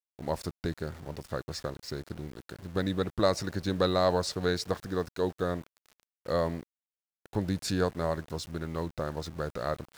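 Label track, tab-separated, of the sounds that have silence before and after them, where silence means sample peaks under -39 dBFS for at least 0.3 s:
6.260000	6.630000	sound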